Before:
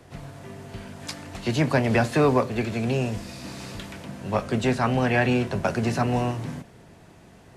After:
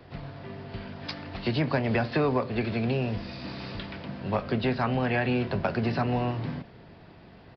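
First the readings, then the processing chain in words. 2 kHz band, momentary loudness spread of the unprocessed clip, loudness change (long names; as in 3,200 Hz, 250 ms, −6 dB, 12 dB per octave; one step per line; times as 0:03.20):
−4.0 dB, 18 LU, −5.0 dB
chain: downward compressor 2.5 to 1, threshold −24 dBFS, peak gain reduction 6 dB
downsampling to 11,025 Hz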